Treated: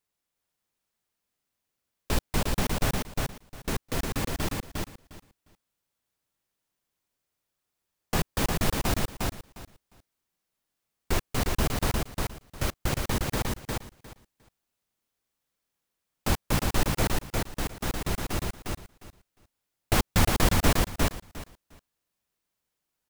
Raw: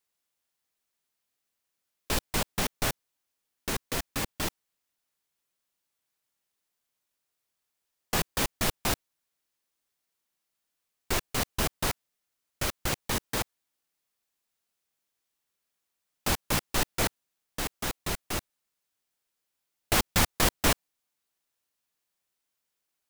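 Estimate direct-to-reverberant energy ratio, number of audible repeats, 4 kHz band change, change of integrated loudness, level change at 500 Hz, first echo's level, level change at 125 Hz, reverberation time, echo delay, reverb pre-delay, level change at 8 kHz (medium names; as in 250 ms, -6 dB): no reverb, 3, -1.0 dB, +0.5 dB, +3.0 dB, -3.0 dB, +7.0 dB, no reverb, 355 ms, no reverb, -1.5 dB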